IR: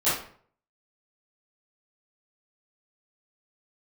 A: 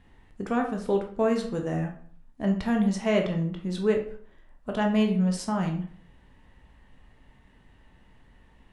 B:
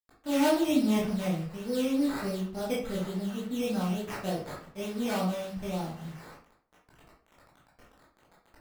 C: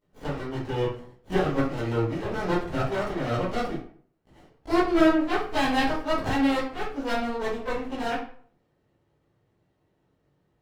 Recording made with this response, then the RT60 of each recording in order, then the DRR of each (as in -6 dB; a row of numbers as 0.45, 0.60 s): C; 0.55, 0.55, 0.55 s; 2.5, -6.5, -15.0 dB